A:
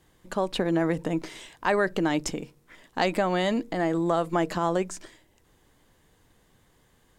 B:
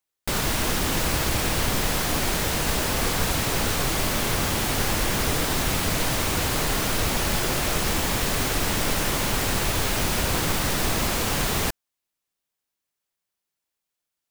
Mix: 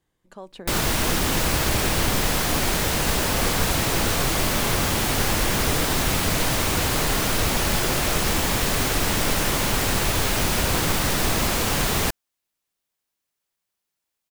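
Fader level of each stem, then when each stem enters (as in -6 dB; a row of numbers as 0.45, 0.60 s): -13.0, +2.0 dB; 0.00, 0.40 s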